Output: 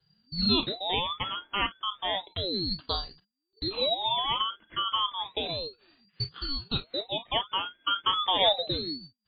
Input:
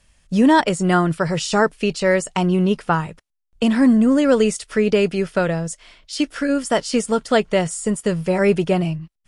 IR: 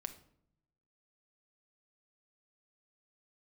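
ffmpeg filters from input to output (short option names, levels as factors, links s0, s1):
-filter_complex "[0:a]asettb=1/sr,asplit=3[s0][s1][s2];[s0]atrim=end=7.874[s3];[s1]atrim=start=7.87:end=8.49,asetpts=PTS-STARTPTS,afade=t=in:d=0.004:c=qsin,afade=t=out:st=0.616:d=0.004:c=qsin,acontrast=81[s4];[s2]atrim=start=8.486[s5];[s3][s4]acrossfade=d=0.004:c1=hsin:c2=qsin[s6];[s6][s5]acrossfade=d=0.004:c1=qsin:c2=hsin,lowpass=f=2100:t=q:w=0.5098,lowpass=f=2100:t=q:w=0.6013,lowpass=f=2100:t=q:w=0.9,lowpass=f=2100:t=q:w=2.563,afreqshift=-2500[s7];[1:a]atrim=start_sample=2205,atrim=end_sample=3969,asetrate=70560,aresample=44100[s8];[s7][s8]afir=irnorm=-1:irlink=0,aeval=exprs='val(0)*sin(2*PI*1600*n/s+1600*0.45/0.32*sin(2*PI*0.32*n/s))':c=same,volume=0.75"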